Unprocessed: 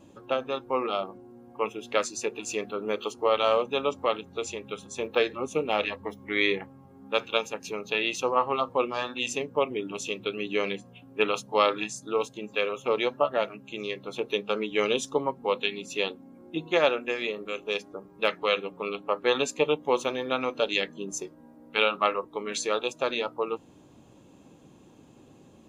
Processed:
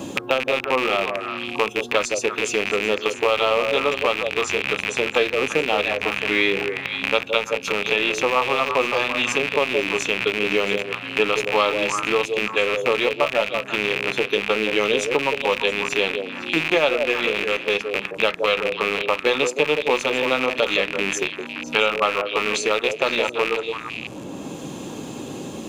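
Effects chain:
loose part that buzzes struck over −48 dBFS, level −18 dBFS
echo through a band-pass that steps 168 ms, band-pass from 490 Hz, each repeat 1.4 octaves, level −5.5 dB
multiband upward and downward compressor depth 70%
level +5 dB

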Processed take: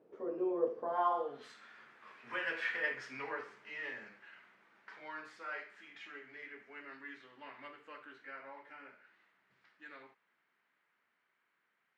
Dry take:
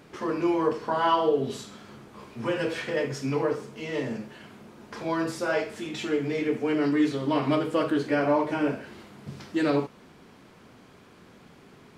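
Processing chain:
source passing by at 0:02.70, 23 m/s, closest 24 metres
band-pass filter sweep 460 Hz → 1,800 Hz, 0:00.81–0:01.47
level +1.5 dB

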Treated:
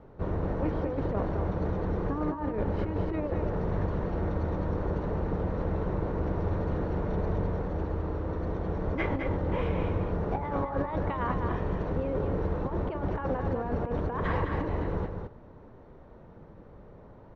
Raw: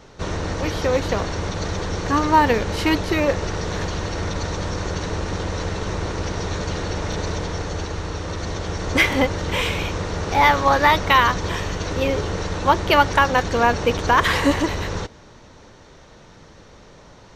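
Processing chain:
Bessel low-pass filter 740 Hz, order 2
compressor whose output falls as the input rises −23 dBFS, ratio −0.5
single-tap delay 210 ms −5.5 dB
level −5 dB

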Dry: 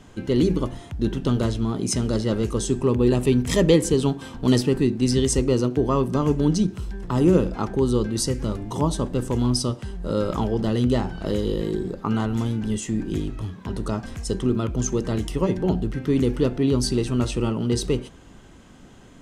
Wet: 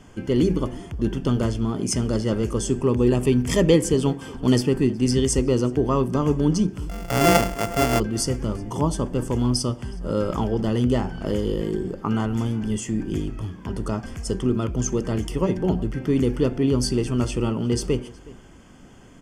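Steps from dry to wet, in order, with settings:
0:06.89–0:08.00: samples sorted by size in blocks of 64 samples
Butterworth band-reject 3,900 Hz, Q 5.4
slap from a distant wall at 63 metres, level −21 dB

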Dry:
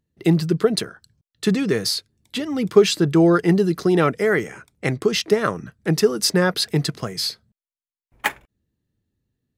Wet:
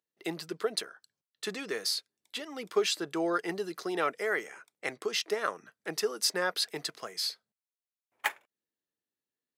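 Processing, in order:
high-pass filter 550 Hz 12 dB per octave
level −8 dB

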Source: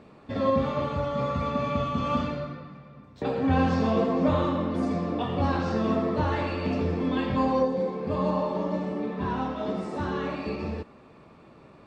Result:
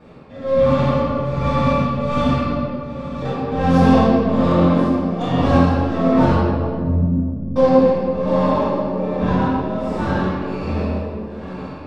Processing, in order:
stylus tracing distortion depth 0.079 ms
feedback delay with all-pass diffusion 1,215 ms, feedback 43%, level −13.5 dB
amplitude tremolo 1.3 Hz, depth 82%
0:06.32–0:07.56: inverse Chebyshev low-pass filter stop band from 1,300 Hz, stop band 80 dB
convolution reverb RT60 2.2 s, pre-delay 3 ms, DRR −13 dB
level −8.5 dB

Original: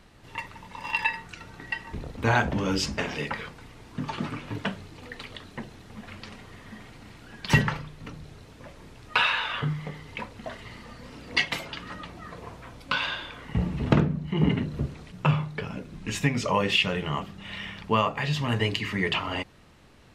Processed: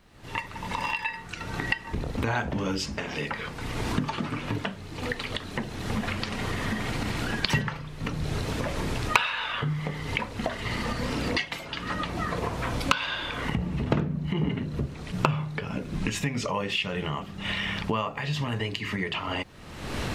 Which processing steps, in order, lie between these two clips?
camcorder AGC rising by 45 dB per second
bit-depth reduction 12 bits, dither none
level −5.5 dB

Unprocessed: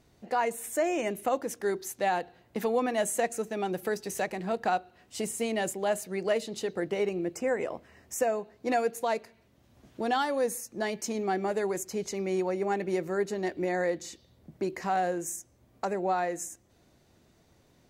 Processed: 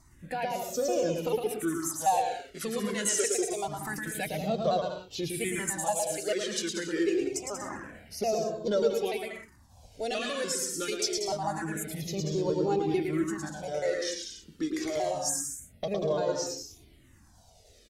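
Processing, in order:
pitch shifter gated in a rhythm −3.5 semitones, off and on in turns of 147 ms
parametric band 8,500 Hz +10 dB 2.2 octaves
in parallel at −0.5 dB: downward compressor, threshold −38 dBFS, peak gain reduction 16 dB
on the sum: high-shelf EQ 6,500 Hz −8 dB
on a send: bouncing-ball delay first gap 110 ms, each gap 0.7×, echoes 5
on the sum: all-pass phaser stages 4, 0.26 Hz, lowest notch 110–2,000 Hz
mains-hum notches 60/120/180/240/300 Hz
flanger whose copies keep moving one way falling 0.53 Hz
level +3.5 dB

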